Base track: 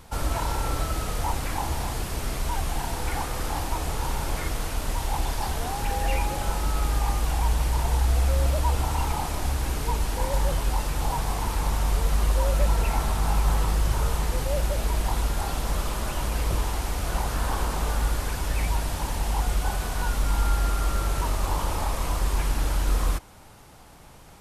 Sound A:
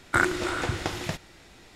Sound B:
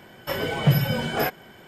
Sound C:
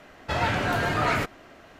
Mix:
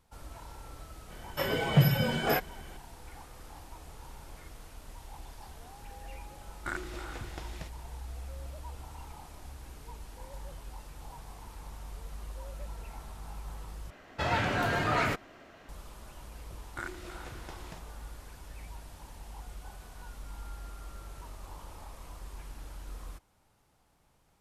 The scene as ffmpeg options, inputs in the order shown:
ffmpeg -i bed.wav -i cue0.wav -i cue1.wav -i cue2.wav -filter_complex "[1:a]asplit=2[link_01][link_02];[0:a]volume=-20dB,asplit=2[link_03][link_04];[link_03]atrim=end=13.904[link_05];[3:a]atrim=end=1.79,asetpts=PTS-STARTPTS,volume=-4dB[link_06];[link_04]atrim=start=15.686[link_07];[2:a]atrim=end=1.67,asetpts=PTS-STARTPTS,volume=-3.5dB,afade=type=in:duration=0.004:curve=hsin,afade=type=out:start_time=1.666:duration=0.004:curve=hsin,adelay=1100[link_08];[link_01]atrim=end=1.75,asetpts=PTS-STARTPTS,volume=-14.5dB,afade=type=in:duration=0.004:curve=hsin,afade=type=out:start_time=1.746:duration=0.004:curve=hsin,adelay=6520[link_09];[link_02]atrim=end=1.75,asetpts=PTS-STARTPTS,volume=-17.5dB,afade=type=in:duration=0.004:curve=hsin,afade=type=out:start_time=1.746:duration=0.004:curve=hsin,adelay=16630[link_10];[link_05][link_06]acrossfade=duration=0.004:curve1=hsin:curve2=hsin[link_11];[link_11][link_07]acrossfade=duration=0.004:curve1=hsin:curve2=hsin[link_12];[link_12][link_08][link_09][link_10]amix=inputs=4:normalize=0" out.wav

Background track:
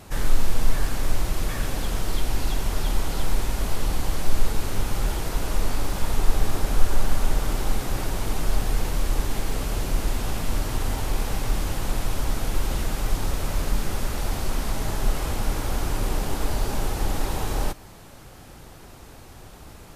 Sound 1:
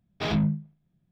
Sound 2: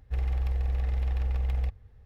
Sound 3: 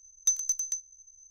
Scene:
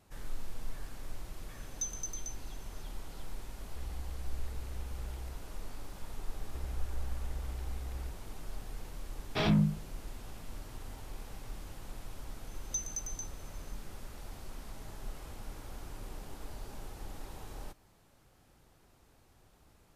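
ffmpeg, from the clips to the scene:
ffmpeg -i bed.wav -i cue0.wav -i cue1.wav -i cue2.wav -filter_complex "[3:a]asplit=2[link_01][link_02];[2:a]asplit=2[link_03][link_04];[0:a]volume=-19.5dB[link_05];[link_03]highpass=43[link_06];[link_01]atrim=end=1.3,asetpts=PTS-STARTPTS,volume=-11.5dB,afade=type=in:duration=0.004:curve=hsin,afade=type=out:start_time=1.296:duration=0.004:curve=hsin,adelay=1540[link_07];[link_06]atrim=end=2.05,asetpts=PTS-STARTPTS,volume=-14.5dB,afade=type=in:duration=0.004:curve=hsin,afade=type=out:start_time=2.046:duration=0.004:curve=hsin,adelay=3640[link_08];[link_04]atrim=end=2.05,asetpts=PTS-STARTPTS,volume=-13dB,afade=type=in:duration=0.004:curve=hsin,afade=type=out:start_time=2.046:duration=0.004:curve=hsin,adelay=283122S[link_09];[1:a]atrim=end=1.11,asetpts=PTS-STARTPTS,volume=-2dB,afade=type=in:duration=0.004:curve=hsin,afade=type=out:start_time=1.106:duration=0.004:curve=hsin,adelay=9150[link_10];[link_02]atrim=end=1.3,asetpts=PTS-STARTPTS,volume=-10.5dB,afade=type=in:duration=0.004:curve=hsin,afade=type=out:start_time=1.296:duration=0.004:curve=hsin,adelay=12470[link_11];[link_05][link_07][link_08][link_09][link_10][link_11]amix=inputs=6:normalize=0" out.wav

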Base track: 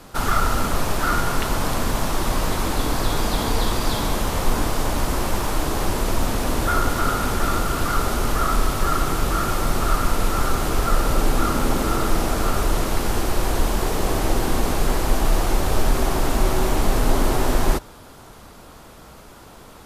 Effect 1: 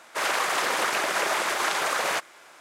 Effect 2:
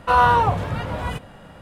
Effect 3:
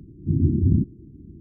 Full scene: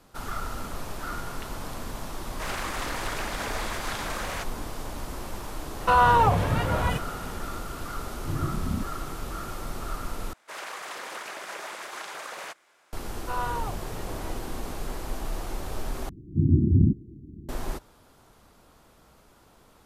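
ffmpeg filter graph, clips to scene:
ffmpeg -i bed.wav -i cue0.wav -i cue1.wav -i cue2.wav -filter_complex "[1:a]asplit=2[link_01][link_02];[2:a]asplit=2[link_03][link_04];[3:a]asplit=2[link_05][link_06];[0:a]volume=-13.5dB[link_07];[link_03]alimiter=level_in=10.5dB:limit=-1dB:release=50:level=0:latency=1[link_08];[link_05]asplit=2[link_09][link_10];[link_10]adelay=2,afreqshift=1.5[link_11];[link_09][link_11]amix=inputs=2:normalize=1[link_12];[link_07]asplit=3[link_13][link_14][link_15];[link_13]atrim=end=10.334[link_16];[link_02]atrim=end=2.6,asetpts=PTS-STARTPTS,volume=-12.5dB[link_17];[link_14]atrim=start=12.926:end=16.094[link_18];[link_06]atrim=end=1.4,asetpts=PTS-STARTPTS,volume=-0.5dB[link_19];[link_15]atrim=start=17.486[link_20];[link_01]atrim=end=2.6,asetpts=PTS-STARTPTS,volume=-8.5dB,afade=type=in:duration=0.004:curve=hsin,afade=type=out:start_time=2.596:duration=0.004:curve=hsin,adelay=2240[link_21];[link_08]atrim=end=1.61,asetpts=PTS-STARTPTS,volume=-9.5dB,afade=type=in:duration=0.004:curve=hsin,afade=type=out:start_time=1.606:duration=0.004:curve=hsin,adelay=5800[link_22];[link_12]atrim=end=1.4,asetpts=PTS-STARTPTS,volume=-7.5dB,afade=type=in:duration=0.004:curve=hsin,afade=type=out:start_time=1.396:duration=0.004:curve=hsin,adelay=7990[link_23];[link_04]atrim=end=1.61,asetpts=PTS-STARTPTS,volume=-16dB,afade=type=in:duration=0.004:curve=hsin,afade=type=out:start_time=1.606:duration=0.004:curve=hsin,adelay=13200[link_24];[link_16][link_17]acrossfade=duration=0.004:curve1=hsin:curve2=hsin[link_25];[link_25][link_18]acrossfade=duration=0.004:curve1=hsin:curve2=hsin[link_26];[link_26][link_19]acrossfade=duration=0.004:curve1=hsin:curve2=hsin[link_27];[link_27][link_20]acrossfade=duration=0.004:curve1=hsin:curve2=hsin[link_28];[link_28][link_21][link_22][link_23][link_24]amix=inputs=5:normalize=0" out.wav

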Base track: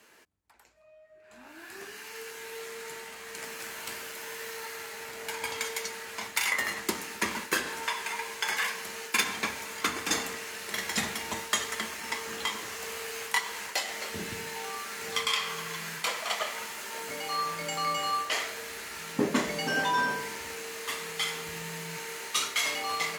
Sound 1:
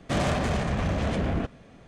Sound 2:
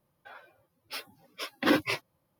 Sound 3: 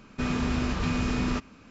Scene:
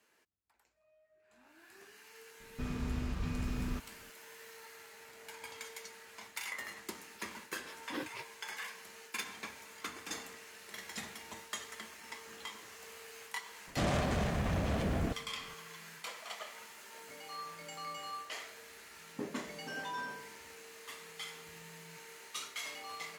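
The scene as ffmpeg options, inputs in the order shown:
ffmpeg -i bed.wav -i cue0.wav -i cue1.wav -i cue2.wav -filter_complex "[0:a]volume=-13.5dB[link_01];[3:a]lowshelf=frequency=150:gain=10,atrim=end=1.7,asetpts=PTS-STARTPTS,volume=-14.5dB,afade=type=in:duration=0.004:curve=hsin,afade=type=out:start_time=1.696:duration=0.004:curve=hsin,adelay=2400[link_02];[2:a]atrim=end=2.39,asetpts=PTS-STARTPTS,volume=-17dB,afade=type=in:duration=0.004:curve=hsin,afade=type=out:start_time=2.386:duration=0.004:curve=hsin,adelay=6270[link_03];[1:a]atrim=end=1.87,asetpts=PTS-STARTPTS,volume=-6.5dB,afade=type=in:duration=0.004:curve=hsin,afade=type=out:start_time=1.866:duration=0.004:curve=hsin,adelay=13670[link_04];[link_01][link_02][link_03][link_04]amix=inputs=4:normalize=0" out.wav

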